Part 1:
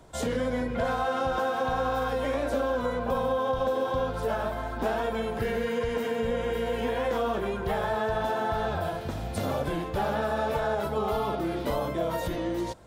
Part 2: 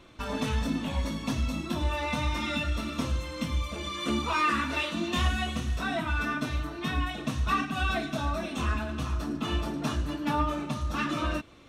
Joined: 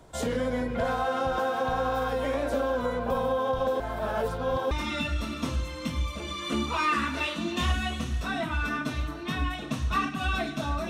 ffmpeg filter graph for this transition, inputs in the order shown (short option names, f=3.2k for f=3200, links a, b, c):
-filter_complex "[0:a]apad=whole_dur=10.89,atrim=end=10.89,asplit=2[a][b];[a]atrim=end=3.802[c];[b]atrim=start=3.798:end=4.712,asetpts=PTS-STARTPTS,areverse[d];[1:a]atrim=start=2.268:end=8.45[e];[c][d]acrossfade=d=0.004:c1=hsin:c2=hsin[f];[f][e]acrossfade=d=0.004:c1=hsin:c2=hsin"